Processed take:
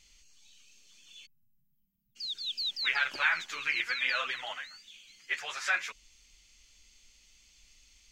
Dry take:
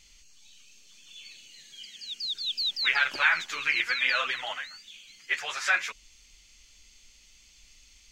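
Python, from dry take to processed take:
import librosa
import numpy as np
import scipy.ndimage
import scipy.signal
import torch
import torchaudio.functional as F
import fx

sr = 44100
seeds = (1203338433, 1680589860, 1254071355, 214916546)

y = fx.cheby2_bandstop(x, sr, low_hz=440.0, high_hz=8000.0, order=4, stop_db=50, at=(1.25, 2.15), fade=0.02)
y = F.gain(torch.from_numpy(y), -4.5).numpy()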